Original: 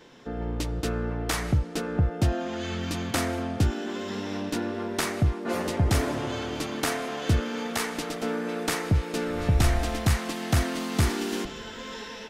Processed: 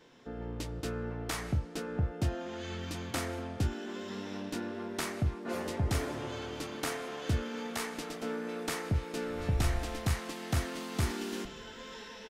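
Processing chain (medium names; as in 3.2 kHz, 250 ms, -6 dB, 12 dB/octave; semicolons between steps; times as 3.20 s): doubling 25 ms -10.5 dB; trim -8 dB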